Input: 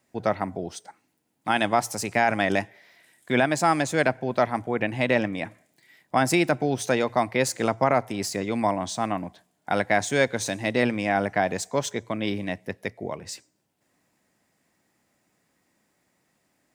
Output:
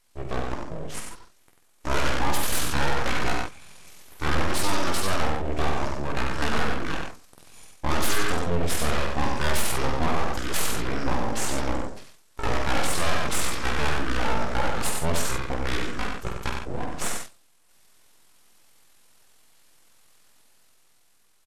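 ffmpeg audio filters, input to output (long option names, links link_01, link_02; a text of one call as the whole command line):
ffmpeg -i in.wav -filter_complex "[0:a]equalizer=frequency=14000:width=0.97:gain=13,dynaudnorm=framelen=390:gausssize=5:maxgain=6dB,highshelf=frequency=2200:gain=8,bandreject=frequency=119.4:width_type=h:width=4,bandreject=frequency=238.8:width_type=h:width=4,bandreject=frequency=358.2:width_type=h:width=4,flanger=delay=7.4:depth=2.6:regen=-30:speed=1.7:shape=sinusoidal,atempo=0.78,asplit=2[link_01][link_02];[link_02]aecho=0:1:48|62:0.501|0.168[link_03];[link_01][link_03]amix=inputs=2:normalize=0,aeval=exprs='abs(val(0))':channel_layout=same,asetrate=26222,aresample=44100,atempo=1.68179,asplit=2[link_04][link_05];[link_05]aecho=0:1:94:0.501[link_06];[link_04][link_06]amix=inputs=2:normalize=0,aeval=exprs='(tanh(3.16*val(0)+0.75)-tanh(0.75))/3.16':channel_layout=same,volume=7dB" out.wav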